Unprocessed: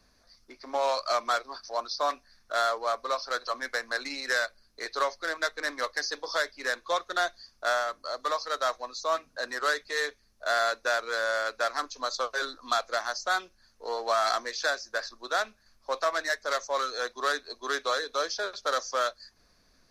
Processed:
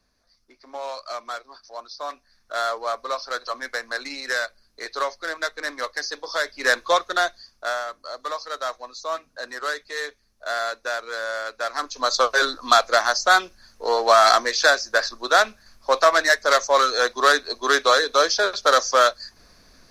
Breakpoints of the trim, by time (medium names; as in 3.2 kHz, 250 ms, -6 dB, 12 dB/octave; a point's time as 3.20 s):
1.94 s -5 dB
2.72 s +2.5 dB
6.34 s +2.5 dB
6.73 s +11.5 dB
7.77 s 0 dB
11.58 s 0 dB
12.16 s +11.5 dB